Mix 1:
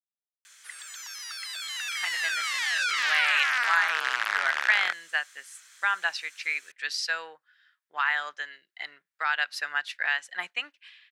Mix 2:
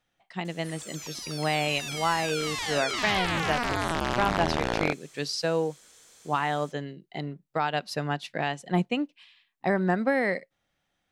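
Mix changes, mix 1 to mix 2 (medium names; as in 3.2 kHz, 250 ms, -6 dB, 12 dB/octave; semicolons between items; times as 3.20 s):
speech: entry -1.65 s; master: remove resonant high-pass 1.6 kHz, resonance Q 2.9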